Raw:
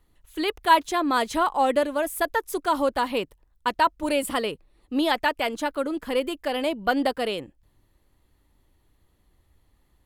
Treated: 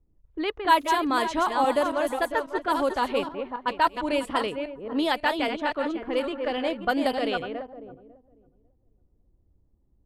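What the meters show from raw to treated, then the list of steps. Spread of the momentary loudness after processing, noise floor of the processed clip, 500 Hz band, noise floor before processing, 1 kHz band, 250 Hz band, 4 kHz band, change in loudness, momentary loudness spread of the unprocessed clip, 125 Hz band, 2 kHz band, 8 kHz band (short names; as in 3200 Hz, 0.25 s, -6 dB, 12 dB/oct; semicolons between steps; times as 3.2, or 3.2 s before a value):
9 LU, -66 dBFS, -1.0 dB, -66 dBFS, -1.0 dB, -1.0 dB, -1.5 dB, -1.0 dB, 9 LU, -0.5 dB, -1.0 dB, -6.0 dB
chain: regenerating reverse delay 0.274 s, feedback 41%, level -5.5 dB; low-pass opened by the level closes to 390 Hz, open at -17.5 dBFS; gain -2 dB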